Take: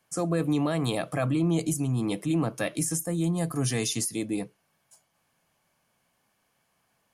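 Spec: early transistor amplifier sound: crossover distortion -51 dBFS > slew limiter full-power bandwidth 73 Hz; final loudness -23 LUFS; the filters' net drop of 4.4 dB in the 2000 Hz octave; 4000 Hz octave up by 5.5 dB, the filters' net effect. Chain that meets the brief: bell 2000 Hz -8.5 dB; bell 4000 Hz +9 dB; crossover distortion -51 dBFS; slew limiter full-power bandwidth 73 Hz; gain +6 dB

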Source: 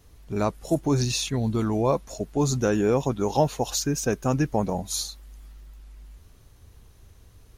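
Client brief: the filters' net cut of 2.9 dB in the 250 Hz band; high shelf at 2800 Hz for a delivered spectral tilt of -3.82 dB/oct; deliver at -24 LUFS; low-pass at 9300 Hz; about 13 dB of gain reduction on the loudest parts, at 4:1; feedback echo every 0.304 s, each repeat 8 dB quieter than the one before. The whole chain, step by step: LPF 9300 Hz; bell 250 Hz -4 dB; high shelf 2800 Hz +8 dB; compressor 4:1, threshold -33 dBFS; feedback echo 0.304 s, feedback 40%, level -8 dB; gain +10.5 dB

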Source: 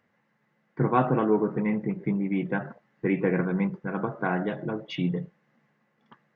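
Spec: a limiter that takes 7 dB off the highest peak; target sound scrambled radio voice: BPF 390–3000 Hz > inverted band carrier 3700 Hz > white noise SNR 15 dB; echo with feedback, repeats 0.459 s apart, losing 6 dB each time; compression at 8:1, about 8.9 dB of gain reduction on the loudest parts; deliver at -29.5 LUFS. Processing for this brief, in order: compressor 8:1, threshold -26 dBFS; limiter -23 dBFS; BPF 390–3000 Hz; feedback echo 0.459 s, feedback 50%, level -6 dB; inverted band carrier 3700 Hz; white noise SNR 15 dB; gain +5.5 dB

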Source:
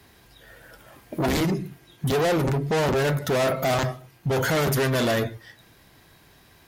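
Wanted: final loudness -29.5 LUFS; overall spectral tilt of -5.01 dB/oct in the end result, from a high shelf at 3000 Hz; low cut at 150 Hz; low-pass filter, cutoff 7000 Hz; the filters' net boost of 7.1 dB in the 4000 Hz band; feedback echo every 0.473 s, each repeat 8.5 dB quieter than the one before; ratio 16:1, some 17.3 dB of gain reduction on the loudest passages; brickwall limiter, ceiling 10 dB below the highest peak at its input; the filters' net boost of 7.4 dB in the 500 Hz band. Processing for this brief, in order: HPF 150 Hz; LPF 7000 Hz; bell 500 Hz +9 dB; high shelf 3000 Hz +3.5 dB; bell 4000 Hz +6.5 dB; compressor 16:1, threshold -30 dBFS; limiter -27.5 dBFS; feedback echo 0.473 s, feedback 38%, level -8.5 dB; gain +7.5 dB

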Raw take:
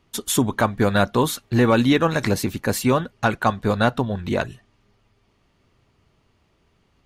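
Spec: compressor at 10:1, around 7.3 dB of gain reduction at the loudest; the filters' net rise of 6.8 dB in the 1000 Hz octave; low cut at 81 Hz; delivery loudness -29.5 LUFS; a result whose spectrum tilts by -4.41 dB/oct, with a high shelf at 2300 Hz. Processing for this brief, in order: HPF 81 Hz; bell 1000 Hz +7.5 dB; high shelf 2300 Hz +5.5 dB; compressor 10:1, threshold -16 dBFS; gain -7 dB

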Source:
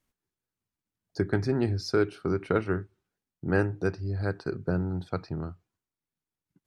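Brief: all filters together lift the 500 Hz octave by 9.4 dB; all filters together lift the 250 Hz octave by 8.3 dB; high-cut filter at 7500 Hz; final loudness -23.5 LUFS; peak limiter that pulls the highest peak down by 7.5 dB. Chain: LPF 7500 Hz; bell 250 Hz +8 dB; bell 500 Hz +9 dB; gain +2 dB; limiter -10 dBFS

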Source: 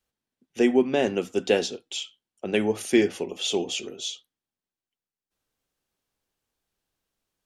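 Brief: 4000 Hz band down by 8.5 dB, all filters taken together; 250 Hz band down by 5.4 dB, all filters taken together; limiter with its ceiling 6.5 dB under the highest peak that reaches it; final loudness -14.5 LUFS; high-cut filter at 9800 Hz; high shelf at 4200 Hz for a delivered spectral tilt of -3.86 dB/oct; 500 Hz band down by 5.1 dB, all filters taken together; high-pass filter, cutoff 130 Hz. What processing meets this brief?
HPF 130 Hz; LPF 9800 Hz; bell 250 Hz -5 dB; bell 500 Hz -4.5 dB; bell 4000 Hz -9 dB; high shelf 4200 Hz -4.5 dB; gain +19 dB; limiter 0 dBFS

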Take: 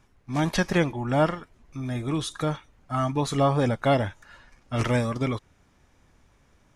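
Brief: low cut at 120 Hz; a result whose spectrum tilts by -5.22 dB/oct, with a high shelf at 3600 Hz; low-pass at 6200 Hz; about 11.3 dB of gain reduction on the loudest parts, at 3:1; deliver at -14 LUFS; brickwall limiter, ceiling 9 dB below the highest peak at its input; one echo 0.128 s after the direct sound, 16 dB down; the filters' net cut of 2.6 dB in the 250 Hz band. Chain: HPF 120 Hz; LPF 6200 Hz; bell 250 Hz -3 dB; high shelf 3600 Hz +5.5 dB; compressor 3:1, threshold -33 dBFS; limiter -28 dBFS; echo 0.128 s -16 dB; gain +25 dB

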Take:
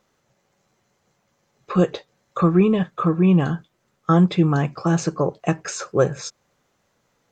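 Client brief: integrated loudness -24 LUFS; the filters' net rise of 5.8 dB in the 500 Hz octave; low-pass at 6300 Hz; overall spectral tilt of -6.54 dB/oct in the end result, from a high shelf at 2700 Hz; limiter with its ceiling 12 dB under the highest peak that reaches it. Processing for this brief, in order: LPF 6300 Hz; bell 500 Hz +7 dB; high shelf 2700 Hz +4.5 dB; limiter -13 dBFS

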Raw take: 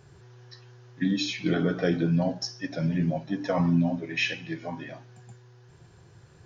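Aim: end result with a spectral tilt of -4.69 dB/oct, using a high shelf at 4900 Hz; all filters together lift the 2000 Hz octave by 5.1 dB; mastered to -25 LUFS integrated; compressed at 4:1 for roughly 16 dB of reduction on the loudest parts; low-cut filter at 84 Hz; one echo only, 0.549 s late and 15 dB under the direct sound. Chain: HPF 84 Hz; bell 2000 Hz +8 dB; high shelf 4900 Hz -6.5 dB; compressor 4:1, threshold -40 dBFS; echo 0.549 s -15 dB; gain +16.5 dB

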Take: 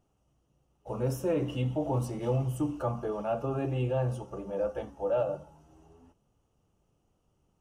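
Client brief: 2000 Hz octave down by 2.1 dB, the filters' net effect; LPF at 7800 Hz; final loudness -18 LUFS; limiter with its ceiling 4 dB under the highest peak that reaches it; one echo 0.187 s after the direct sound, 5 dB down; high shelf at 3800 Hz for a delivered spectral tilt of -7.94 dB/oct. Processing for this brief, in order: LPF 7800 Hz; bell 2000 Hz -4.5 dB; high shelf 3800 Hz +4 dB; limiter -23.5 dBFS; echo 0.187 s -5 dB; gain +14.5 dB

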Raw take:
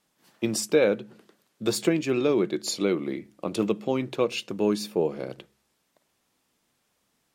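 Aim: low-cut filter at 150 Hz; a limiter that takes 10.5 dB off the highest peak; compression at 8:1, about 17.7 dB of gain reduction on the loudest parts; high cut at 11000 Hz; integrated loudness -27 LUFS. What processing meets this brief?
HPF 150 Hz; LPF 11000 Hz; compressor 8:1, threshold -35 dBFS; gain +16 dB; limiter -16 dBFS

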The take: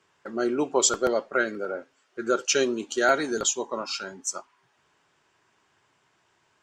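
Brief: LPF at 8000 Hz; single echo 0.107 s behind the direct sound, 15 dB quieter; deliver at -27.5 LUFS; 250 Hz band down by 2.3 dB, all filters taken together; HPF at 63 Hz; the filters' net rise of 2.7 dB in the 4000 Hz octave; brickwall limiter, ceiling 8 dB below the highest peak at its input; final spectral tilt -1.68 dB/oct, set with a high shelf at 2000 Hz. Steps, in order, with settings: HPF 63 Hz; LPF 8000 Hz; bell 250 Hz -3.5 dB; high shelf 2000 Hz -3 dB; bell 4000 Hz +7 dB; limiter -17 dBFS; echo 0.107 s -15 dB; gain +2 dB

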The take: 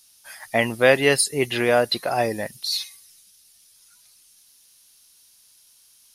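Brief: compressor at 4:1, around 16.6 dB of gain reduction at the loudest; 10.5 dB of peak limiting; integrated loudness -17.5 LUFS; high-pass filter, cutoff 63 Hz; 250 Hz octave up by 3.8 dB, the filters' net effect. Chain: HPF 63 Hz; bell 250 Hz +4.5 dB; compressor 4:1, threshold -31 dBFS; gain +19.5 dB; limiter -6.5 dBFS

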